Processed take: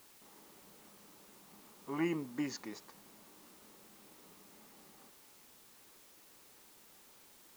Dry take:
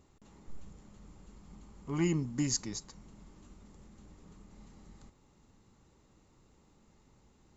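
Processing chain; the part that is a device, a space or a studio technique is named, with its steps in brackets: wax cylinder (band-pass 360–2500 Hz; wow and flutter; white noise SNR 15 dB); trim +1.5 dB

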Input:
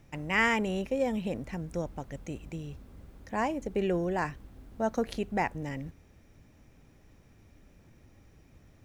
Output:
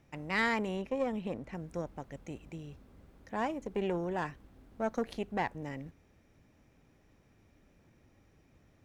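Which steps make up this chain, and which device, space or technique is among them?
0.76–1.55 s: treble shelf 4.6 kHz -6 dB; tube preamp driven hard (valve stage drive 20 dB, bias 0.65; bass shelf 130 Hz -6.5 dB; treble shelf 5.1 kHz -5.5 dB)

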